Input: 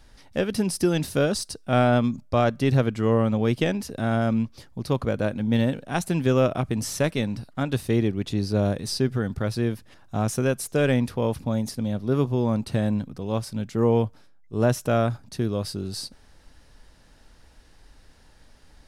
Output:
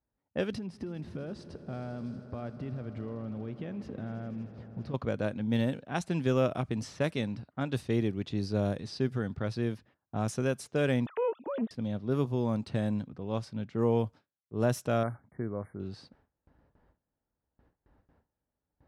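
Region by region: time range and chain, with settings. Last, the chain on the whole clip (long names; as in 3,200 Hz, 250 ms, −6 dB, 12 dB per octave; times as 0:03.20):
0:00.53–0:04.94: low-shelf EQ 340 Hz +7.5 dB + downward compressor 16 to 1, threshold −27 dBFS + echo that builds up and dies away 80 ms, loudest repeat 5, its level −18 dB
0:11.06–0:11.71: three sine waves on the formant tracks + highs frequency-modulated by the lows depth 0.31 ms
0:15.03–0:15.80: linear-phase brick-wall band-stop 2,300–8,700 Hz + low-shelf EQ 440 Hz −4 dB
whole clip: low-pass that shuts in the quiet parts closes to 970 Hz, open at −18.5 dBFS; noise gate with hold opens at −42 dBFS; high-pass filter 71 Hz; level −6.5 dB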